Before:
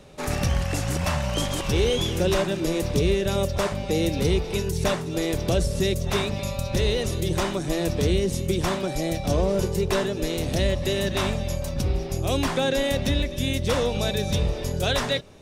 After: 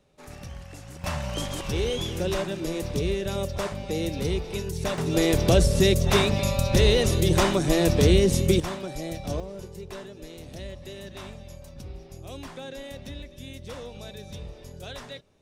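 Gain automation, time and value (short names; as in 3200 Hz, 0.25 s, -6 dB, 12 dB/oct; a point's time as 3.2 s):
-16.5 dB
from 1.04 s -5 dB
from 4.98 s +4 dB
from 8.6 s -7 dB
from 9.4 s -15.5 dB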